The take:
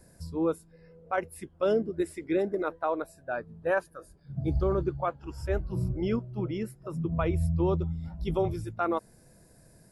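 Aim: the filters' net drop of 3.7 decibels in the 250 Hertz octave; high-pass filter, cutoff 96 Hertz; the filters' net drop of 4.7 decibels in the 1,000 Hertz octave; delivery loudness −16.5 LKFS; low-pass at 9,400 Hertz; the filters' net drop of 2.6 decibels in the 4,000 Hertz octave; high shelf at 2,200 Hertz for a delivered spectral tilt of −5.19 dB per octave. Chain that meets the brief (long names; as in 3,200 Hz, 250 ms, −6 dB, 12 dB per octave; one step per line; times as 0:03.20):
high-pass filter 96 Hz
low-pass filter 9,400 Hz
parametric band 250 Hz −5.5 dB
parametric band 1,000 Hz −7 dB
high-shelf EQ 2,200 Hz +4 dB
parametric band 4,000 Hz −7 dB
level +17.5 dB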